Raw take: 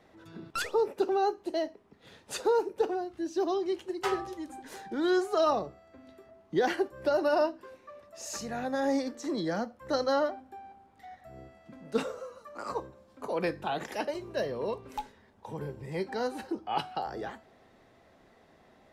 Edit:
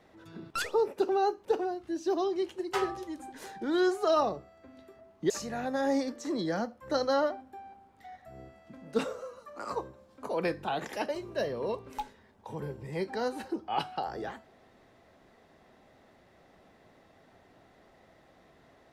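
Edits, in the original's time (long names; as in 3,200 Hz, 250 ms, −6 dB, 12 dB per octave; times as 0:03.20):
0:01.45–0:02.75: remove
0:06.60–0:08.29: remove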